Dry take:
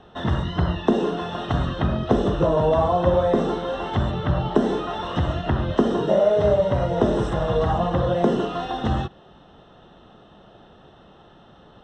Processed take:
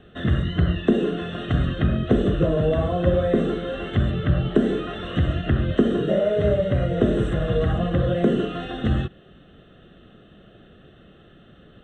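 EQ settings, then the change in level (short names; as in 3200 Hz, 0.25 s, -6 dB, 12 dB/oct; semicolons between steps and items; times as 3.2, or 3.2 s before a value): fixed phaser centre 2200 Hz, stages 4; +2.5 dB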